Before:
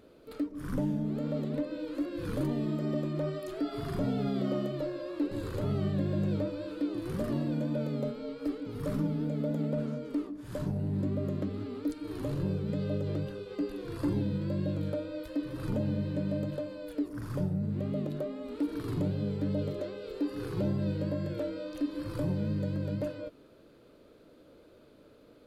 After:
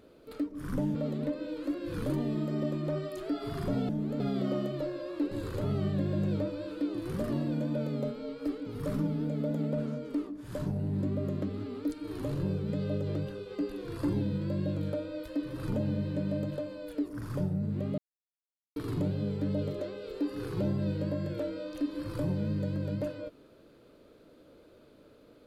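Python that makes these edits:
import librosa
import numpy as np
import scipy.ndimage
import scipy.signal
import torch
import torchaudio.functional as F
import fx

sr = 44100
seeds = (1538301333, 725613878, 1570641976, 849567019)

y = fx.edit(x, sr, fx.move(start_s=0.95, length_s=0.31, to_s=4.2),
    fx.silence(start_s=17.98, length_s=0.78), tone=tone)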